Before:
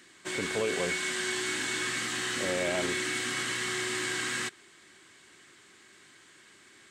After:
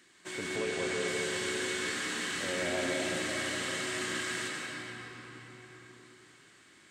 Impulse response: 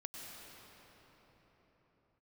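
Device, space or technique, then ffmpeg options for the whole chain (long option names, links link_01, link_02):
cathedral: -filter_complex "[1:a]atrim=start_sample=2205[link_01];[0:a][link_01]afir=irnorm=-1:irlink=0,asettb=1/sr,asplit=3[link_02][link_03][link_04];[link_02]atrim=end=0.564[link_05];[link_03]atrim=start=0.56:end=1.08,asetpts=PTS-STARTPTS,afade=type=in:duration=0.004:curve=qsin,afade=type=out:start_time=0.516:duration=0.004:curve=qsin,lowpass=9600[link_06];[link_04]atrim=start=1.076[link_07];[link_05][link_06]acrossfade=duration=0.004:curve1=hsin:curve2=qsin[link_08];[link_08][link_07]acrossfade=duration=0.004:curve1=qsin:curve2=hsin"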